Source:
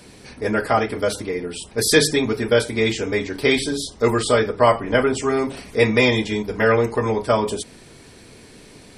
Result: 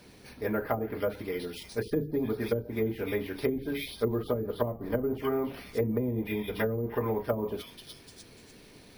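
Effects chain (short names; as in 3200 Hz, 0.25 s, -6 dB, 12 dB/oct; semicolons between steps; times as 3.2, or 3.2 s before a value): delay with a stepping band-pass 0.297 s, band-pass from 3500 Hz, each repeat 0.7 oct, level -2.5 dB; treble ducked by the level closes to 310 Hz, closed at -12.5 dBFS; careless resampling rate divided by 3×, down filtered, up hold; gain -8.5 dB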